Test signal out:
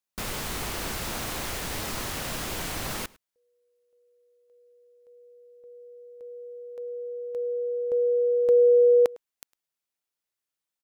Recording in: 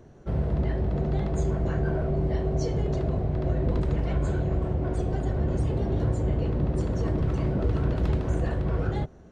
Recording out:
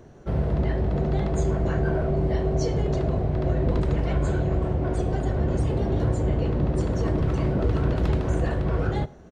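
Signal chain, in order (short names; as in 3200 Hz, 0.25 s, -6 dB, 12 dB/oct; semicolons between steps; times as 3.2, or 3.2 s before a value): low shelf 320 Hz -3 dB; outdoor echo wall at 18 m, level -23 dB; gain +4.5 dB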